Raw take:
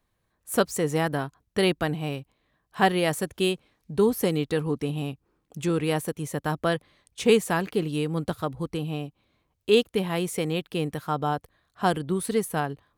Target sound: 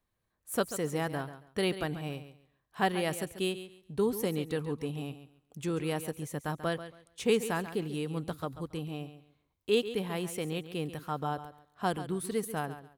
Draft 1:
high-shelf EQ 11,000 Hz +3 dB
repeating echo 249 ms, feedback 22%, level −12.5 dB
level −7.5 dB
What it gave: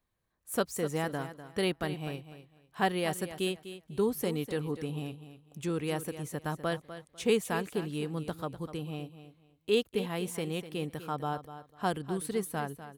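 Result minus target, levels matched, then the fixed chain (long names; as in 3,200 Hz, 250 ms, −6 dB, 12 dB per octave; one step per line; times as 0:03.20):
echo 111 ms late
high-shelf EQ 11,000 Hz +3 dB
repeating echo 138 ms, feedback 22%, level −12.5 dB
level −7.5 dB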